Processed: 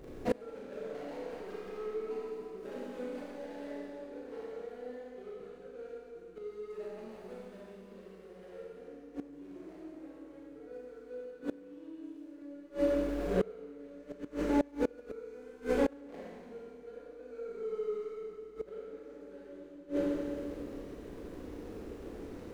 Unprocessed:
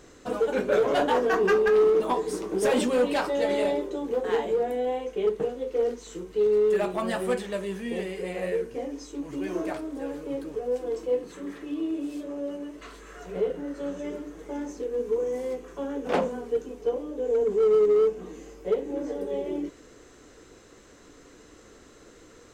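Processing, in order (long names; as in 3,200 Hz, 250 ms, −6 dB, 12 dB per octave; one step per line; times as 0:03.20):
running median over 41 samples
four-comb reverb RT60 2.3 s, combs from 28 ms, DRR −6 dB
gate with flip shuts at −20 dBFS, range −27 dB
level +3 dB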